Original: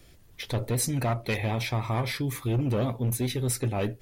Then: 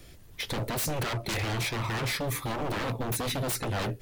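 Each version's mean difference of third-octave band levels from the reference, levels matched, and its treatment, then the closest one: 8.0 dB: wavefolder -29 dBFS; gain +4 dB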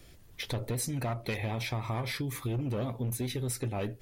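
1.5 dB: compressor 4:1, threshold -31 dBFS, peak gain reduction 7 dB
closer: second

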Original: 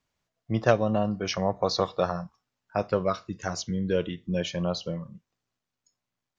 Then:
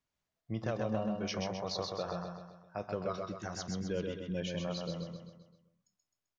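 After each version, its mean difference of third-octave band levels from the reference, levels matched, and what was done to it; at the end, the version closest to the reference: 6.5 dB: limiter -16.5 dBFS, peak gain reduction 9 dB; on a send: feedback echo 0.13 s, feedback 49%, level -4 dB; on the sum: gain -9 dB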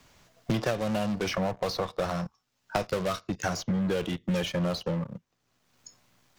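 8.5 dB: in parallel at -8.5 dB: fuzz box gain 33 dB, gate -43 dBFS; on the sum: three-band squash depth 100%; gain -9 dB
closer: first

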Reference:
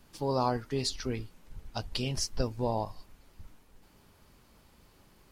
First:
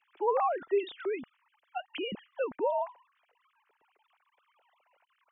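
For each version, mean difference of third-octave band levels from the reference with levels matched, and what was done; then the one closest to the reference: 16.0 dB: sine-wave speech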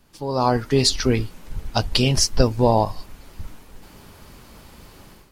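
2.5 dB: AGC gain up to 14 dB; gain +1.5 dB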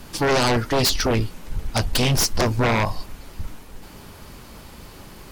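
7.0 dB: sine folder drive 15 dB, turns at -15 dBFS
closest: second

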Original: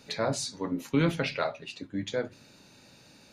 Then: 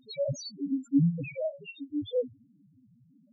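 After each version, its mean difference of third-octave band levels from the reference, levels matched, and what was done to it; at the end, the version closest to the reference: 18.5 dB: loudest bins only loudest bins 1; gain +8.5 dB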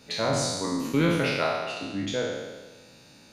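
7.0 dB: spectral trails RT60 1.35 s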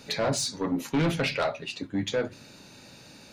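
3.5 dB: soft clip -26 dBFS, distortion -9 dB; gain +6 dB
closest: third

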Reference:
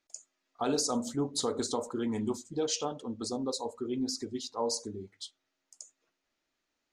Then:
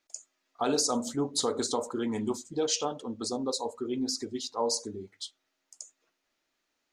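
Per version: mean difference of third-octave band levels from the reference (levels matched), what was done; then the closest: 1.0 dB: low shelf 220 Hz -6 dB; gain +3.5 dB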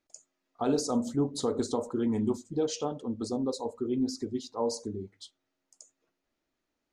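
3.0 dB: tilt shelf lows +5 dB, about 860 Hz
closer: first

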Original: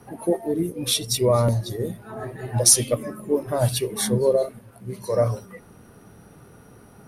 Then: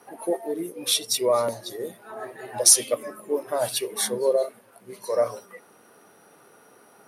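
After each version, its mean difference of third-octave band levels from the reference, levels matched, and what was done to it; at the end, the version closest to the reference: 5.0 dB: HPF 440 Hz 12 dB/oct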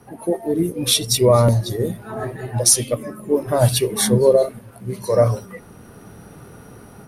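1.5 dB: AGC gain up to 7 dB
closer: second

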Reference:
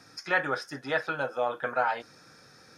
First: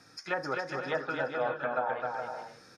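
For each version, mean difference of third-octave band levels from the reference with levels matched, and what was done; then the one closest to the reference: 6.0 dB: treble ducked by the level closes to 840 Hz, closed at -22 dBFS; on a send: bouncing-ball echo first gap 0.26 s, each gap 0.6×, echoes 5; on the sum: gain -3 dB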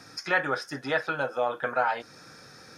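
1.5 dB: in parallel at -1.5 dB: compressor, threshold -39 dBFS, peak gain reduction 17.5 dB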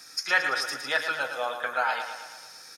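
9.0 dB: tilt +4.5 dB/oct; on a send: feedback echo 0.112 s, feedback 57%, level -8 dB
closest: second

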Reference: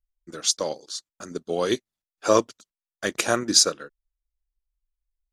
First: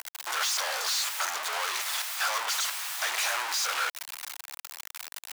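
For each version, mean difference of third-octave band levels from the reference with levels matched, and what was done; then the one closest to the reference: 19.5 dB: infinite clipping; HPF 830 Hz 24 dB/oct; high shelf 4700 Hz -6.5 dB; gain +3.5 dB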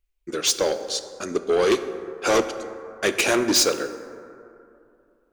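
7.5 dB: fifteen-band EQ 160 Hz -3 dB, 400 Hz +8 dB, 2500 Hz +9 dB; soft clip -20.5 dBFS, distortion -5 dB; plate-style reverb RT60 2.7 s, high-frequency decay 0.35×, DRR 9.5 dB; gain +5.5 dB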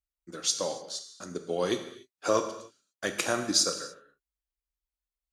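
5.5 dB: HPF 56 Hz; compressor 1.5:1, threshold -23 dBFS, peak gain reduction 4.5 dB; non-linear reverb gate 0.32 s falling, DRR 6 dB; gain -4 dB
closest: third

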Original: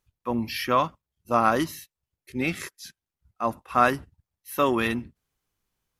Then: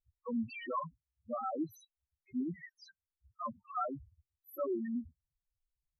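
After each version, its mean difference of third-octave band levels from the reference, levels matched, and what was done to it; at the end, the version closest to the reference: 17.5 dB: compressor 2:1, threshold -29 dBFS, peak gain reduction 9 dB; loudest bins only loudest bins 2; gain -1.5 dB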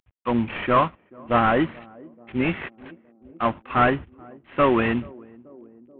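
8.5 dB: CVSD 16 kbps; on a send: narrowing echo 0.433 s, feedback 78%, band-pass 310 Hz, level -22 dB; on the sum: gain +5.5 dB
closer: second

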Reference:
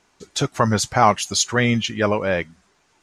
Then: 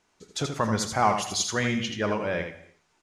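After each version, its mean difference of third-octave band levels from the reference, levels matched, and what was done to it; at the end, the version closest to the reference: 6.0 dB: on a send: echo 81 ms -6.5 dB; on the sum: non-linear reverb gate 0.33 s falling, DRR 10.5 dB; gain -8 dB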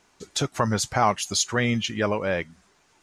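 1.5 dB: high shelf 10000 Hz +4 dB; in parallel at +3 dB: compressor, threshold -26 dBFS, peak gain reduction 16 dB; on the sum: gain -8 dB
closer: second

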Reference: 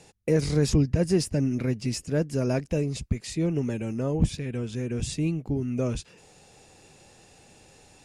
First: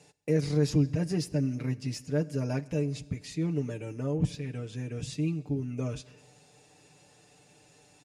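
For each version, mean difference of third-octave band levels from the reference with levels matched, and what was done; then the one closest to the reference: 2.0 dB: HPF 66 Hz; dynamic EQ 8500 Hz, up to -6 dB, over -53 dBFS, Q 2.2; comb 6.8 ms, depth 75%; Schroeder reverb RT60 1.4 s, combs from 31 ms, DRR 19 dB; gain -7 dB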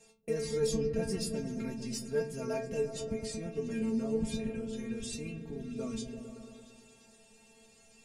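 6.5 dB: high shelf 8800 Hz +6 dB; metallic resonator 220 Hz, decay 0.3 s, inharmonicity 0.002; on a send: repeats that get brighter 0.114 s, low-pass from 200 Hz, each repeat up 1 oct, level -3 dB; on the sum: gain +5.5 dB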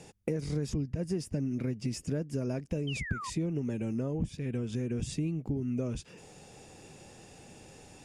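4.5 dB: compressor 6:1, threshold -34 dBFS, peak gain reduction 16.5 dB; notch 4100 Hz, Q 13; painted sound fall, 2.87–3.3, 950–3200 Hz -40 dBFS; bell 210 Hz +5 dB 2.5 oct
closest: first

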